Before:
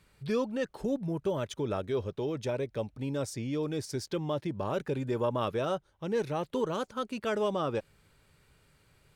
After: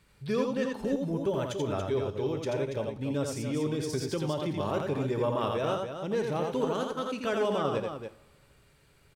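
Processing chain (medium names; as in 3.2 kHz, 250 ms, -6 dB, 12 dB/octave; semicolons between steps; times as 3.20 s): vibrato 7.9 Hz 8.8 cents; loudspeakers at several distances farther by 29 m -4 dB, 97 m -8 dB; two-slope reverb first 0.48 s, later 1.9 s, from -18 dB, DRR 11 dB; 3.93–4.71 s: three bands compressed up and down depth 70%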